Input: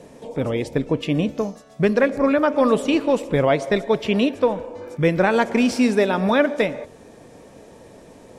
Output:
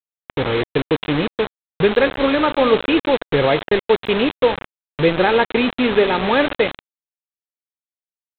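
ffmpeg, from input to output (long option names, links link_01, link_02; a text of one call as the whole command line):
ffmpeg -i in.wav -af "aecho=1:1:2.4:0.42,aresample=8000,acrusher=bits=3:mix=0:aa=0.000001,aresample=44100,volume=1.5dB" out.wav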